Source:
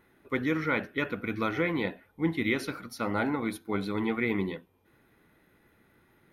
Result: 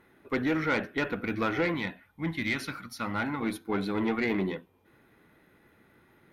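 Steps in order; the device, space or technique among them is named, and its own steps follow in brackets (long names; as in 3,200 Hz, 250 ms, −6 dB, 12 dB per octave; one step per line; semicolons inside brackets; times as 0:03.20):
0:01.74–0:03.41: parametric band 450 Hz −12.5 dB 1.3 octaves
tube preamp driven hard (tube saturation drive 23 dB, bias 0.3; low-shelf EQ 82 Hz −5 dB; high-shelf EQ 5,000 Hz −4.5 dB)
level +4 dB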